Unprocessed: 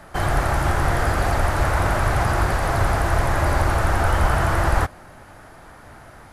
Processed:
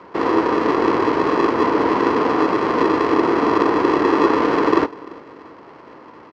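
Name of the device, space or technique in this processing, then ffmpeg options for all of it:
ring modulator pedal into a guitar cabinet: -filter_complex "[0:a]asplit=2[a][b];[b]adelay=342,lowpass=f=2k:p=1,volume=-22.5dB,asplit=2[c][d];[d]adelay=342,lowpass=f=2k:p=1,volume=0.48,asplit=2[e][f];[f]adelay=342,lowpass=f=2k:p=1,volume=0.48[g];[a][c][e][g]amix=inputs=4:normalize=0,aeval=exprs='val(0)*sgn(sin(2*PI*370*n/s))':c=same,highpass=96,equalizer=f=330:t=q:w=4:g=4,equalizer=f=540:t=q:w=4:g=3,equalizer=f=950:t=q:w=4:g=7,equalizer=f=1.7k:t=q:w=4:g=-4,equalizer=f=2.5k:t=q:w=4:g=-5,equalizer=f=3.6k:t=q:w=4:g=-10,lowpass=f=4.1k:w=0.5412,lowpass=f=4.1k:w=1.3066"

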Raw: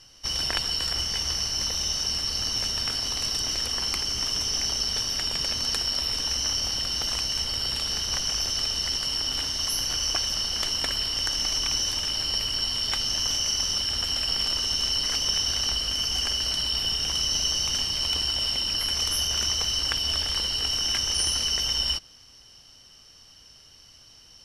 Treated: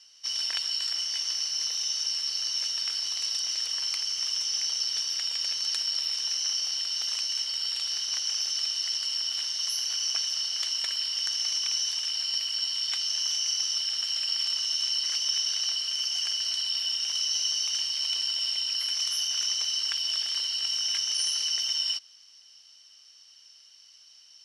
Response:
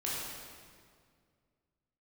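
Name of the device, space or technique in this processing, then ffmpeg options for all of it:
piezo pickup straight into a mixer: -filter_complex "[0:a]asettb=1/sr,asplit=3[a][b][c];[a]atrim=end=15.094[d];[b]atrim=start=15.09:end=16.24,asetpts=PTS-STARTPTS,afade=t=in:d=0.004:c=qsin,afade=t=out:st=1.146:d=0.004:c=qsin,highpass=180[e];[c]atrim=start=16.236[f];[d][e]acrossfade=d=0.004:c1=hsin:c2=qsin[g];[g][f]acrossfade=d=0.004:c1=qsin:c2=hsin,lowpass=5.1k,aderivative,volume=4.5dB"

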